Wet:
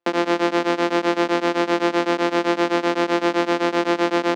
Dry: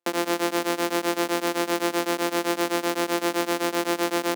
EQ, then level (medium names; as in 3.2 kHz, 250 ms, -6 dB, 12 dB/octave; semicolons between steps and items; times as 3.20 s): distance through air 160 m; +6.0 dB